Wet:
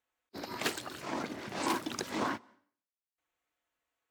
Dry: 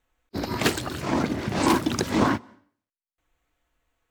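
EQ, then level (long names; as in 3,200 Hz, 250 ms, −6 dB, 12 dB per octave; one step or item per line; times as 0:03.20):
high-pass filter 460 Hz 6 dB per octave
−8.5 dB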